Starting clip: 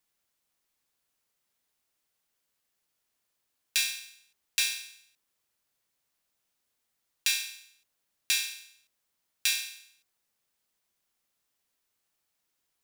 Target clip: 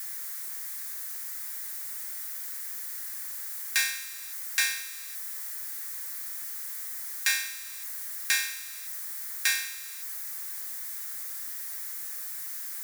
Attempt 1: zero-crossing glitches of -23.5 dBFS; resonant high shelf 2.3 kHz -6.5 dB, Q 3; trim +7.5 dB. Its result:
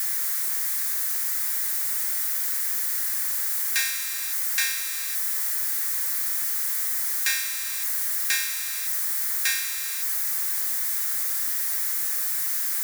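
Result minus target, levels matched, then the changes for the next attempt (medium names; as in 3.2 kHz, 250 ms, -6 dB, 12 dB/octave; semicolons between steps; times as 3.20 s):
zero-crossing glitches: distortion +10 dB
change: zero-crossing glitches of -34.5 dBFS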